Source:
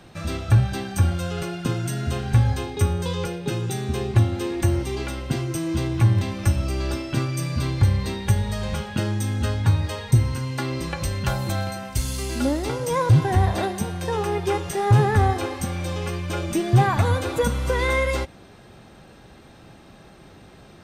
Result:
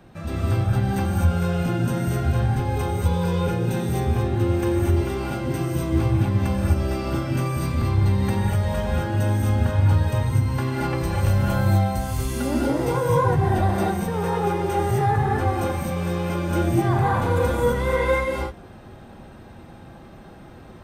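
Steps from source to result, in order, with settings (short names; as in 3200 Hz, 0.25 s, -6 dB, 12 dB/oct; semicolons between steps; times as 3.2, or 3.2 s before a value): bell 5300 Hz -9.5 dB 2.5 oct; limiter -17 dBFS, peak gain reduction 8.5 dB; non-linear reverb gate 0.28 s rising, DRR -5 dB; gain -1.5 dB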